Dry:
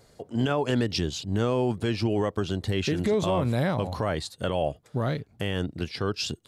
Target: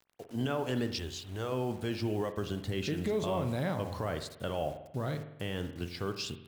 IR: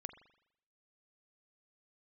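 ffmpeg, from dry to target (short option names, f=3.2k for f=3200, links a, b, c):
-filter_complex "[0:a]asettb=1/sr,asplit=3[a][b][c];[a]atrim=end=0.934[d];[b]atrim=start=0.93:end=1.52,asetpts=PTS-STARTPTS,afade=t=in:d=0.004:c=qsin,afade=t=out:st=0.586:d=0.004:c=qsin,equalizer=f=200:t=o:w=1.1:g=-13.5[e];[c]atrim=start=1.516[f];[d][e]acrossfade=d=0.004:c1=hsin:c2=qsin[g];[g][f]acrossfade=d=0.004:c1=qsin:c2=hsin,acrusher=bits=7:mix=0:aa=0.000001[h];[1:a]atrim=start_sample=2205,asetrate=39249,aresample=44100[i];[h][i]afir=irnorm=-1:irlink=0,volume=-3.5dB"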